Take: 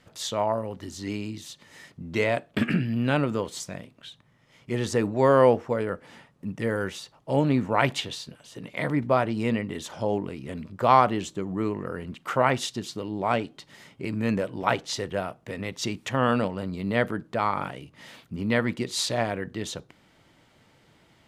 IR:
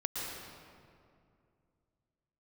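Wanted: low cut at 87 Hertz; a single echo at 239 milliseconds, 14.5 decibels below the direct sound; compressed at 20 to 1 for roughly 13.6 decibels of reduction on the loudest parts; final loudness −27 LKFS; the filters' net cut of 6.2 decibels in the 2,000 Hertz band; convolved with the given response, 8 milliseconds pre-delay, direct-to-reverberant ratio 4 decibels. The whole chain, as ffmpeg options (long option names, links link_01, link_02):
-filter_complex "[0:a]highpass=87,equalizer=frequency=2000:width_type=o:gain=-8,acompressor=threshold=-26dB:ratio=20,aecho=1:1:239:0.188,asplit=2[link_01][link_02];[1:a]atrim=start_sample=2205,adelay=8[link_03];[link_02][link_03]afir=irnorm=-1:irlink=0,volume=-8dB[link_04];[link_01][link_04]amix=inputs=2:normalize=0,volume=5dB"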